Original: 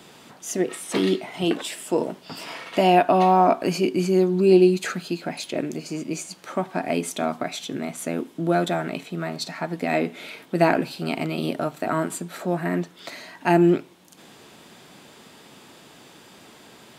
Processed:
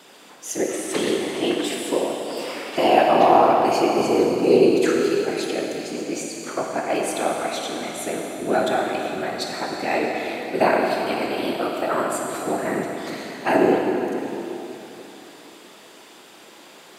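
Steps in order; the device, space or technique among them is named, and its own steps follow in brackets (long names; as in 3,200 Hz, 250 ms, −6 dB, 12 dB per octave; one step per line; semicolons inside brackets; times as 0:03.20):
whispering ghost (random phases in short frames; high-pass filter 280 Hz 12 dB per octave; convolution reverb RT60 3.3 s, pre-delay 21 ms, DRR −0.5 dB)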